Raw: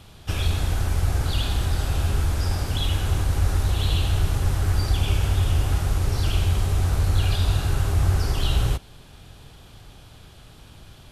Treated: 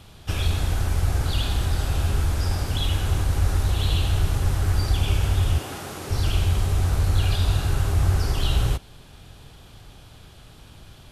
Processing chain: 5.58–6.1 Chebyshev high-pass 260 Hz, order 2

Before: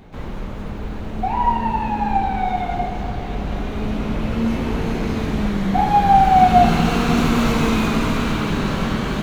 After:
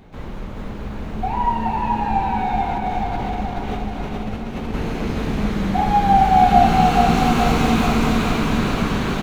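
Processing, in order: 2.76–4.74 negative-ratio compressor -26 dBFS, ratio -1; on a send: feedback echo 0.427 s, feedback 56%, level -3.5 dB; on the sum: gain -2 dB

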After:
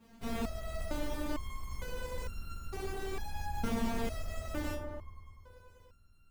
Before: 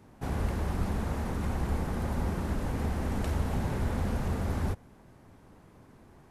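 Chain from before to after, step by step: half-waves squared off; dark delay 99 ms, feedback 80%, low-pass 1200 Hz, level -5 dB; stepped resonator 2.2 Hz 230–1400 Hz; gain +6 dB

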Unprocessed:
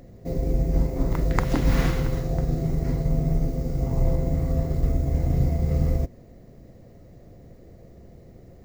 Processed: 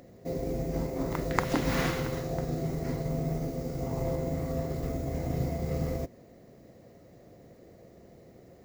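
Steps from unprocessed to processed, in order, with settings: HPF 300 Hz 6 dB/oct

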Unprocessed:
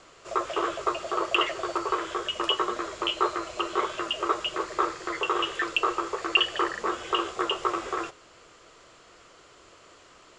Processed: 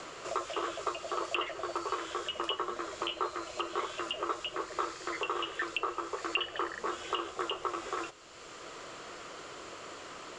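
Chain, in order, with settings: three-band squash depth 70%; gain -7.5 dB

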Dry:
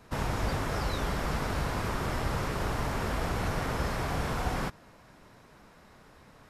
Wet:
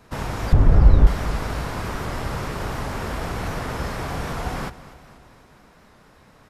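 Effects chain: 0.53–1.07 tilt -4.5 dB/oct; on a send: feedback echo 0.244 s, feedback 57%, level -17 dB; on the sum: record warp 78 rpm, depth 100 cents; gain +3 dB

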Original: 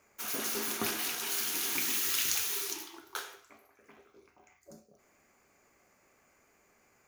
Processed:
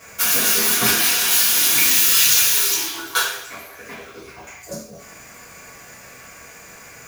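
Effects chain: bell 390 Hz -7 dB 2.6 oct; power-law curve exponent 0.7; transient shaper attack +5 dB, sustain -1 dB; two-slope reverb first 0.38 s, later 1.9 s, from -25 dB, DRR -9 dB; gain +3 dB

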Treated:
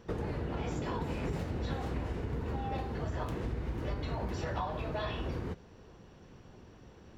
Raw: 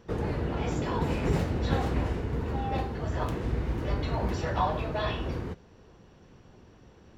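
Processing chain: compressor, threshold -32 dBFS, peak gain reduction 11 dB

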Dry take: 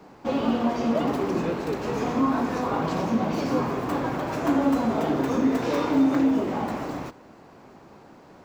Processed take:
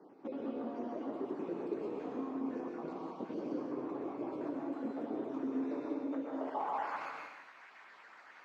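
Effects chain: random spectral dropouts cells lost 35%; tilt shelf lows -8 dB, about 750 Hz; compressor, threshold -33 dBFS, peak gain reduction 12 dB; band-pass sweep 340 Hz -> 1800 Hz, 5.94–7.16; plate-style reverb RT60 1.1 s, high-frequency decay 1×, pre-delay 0.105 s, DRR 0 dB; gain +1 dB

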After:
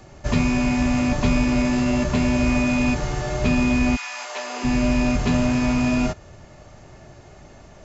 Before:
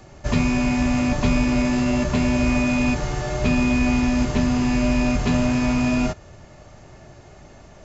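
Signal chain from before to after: 3.95–4.63 HPF 1200 Hz -> 380 Hz 24 dB/oct

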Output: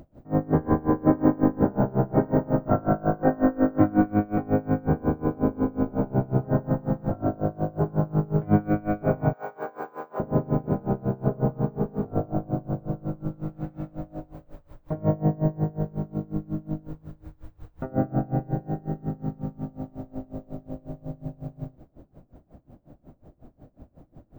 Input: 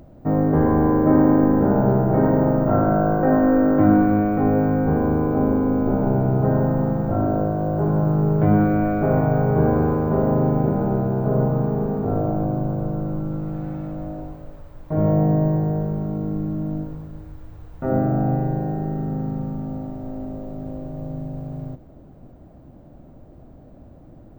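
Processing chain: 9.33–10.2 HPF 790 Hz 12 dB/oct; dB-linear tremolo 5.5 Hz, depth 25 dB

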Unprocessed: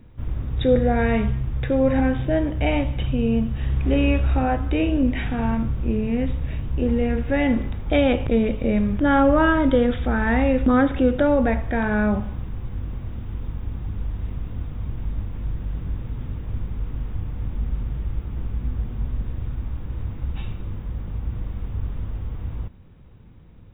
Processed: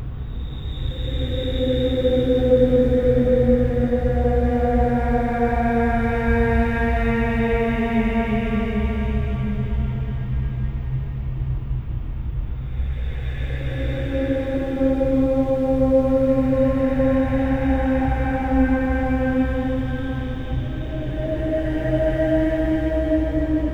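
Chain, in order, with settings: crossover distortion -45 dBFS; Paulstretch 12×, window 0.25 s, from 0.49

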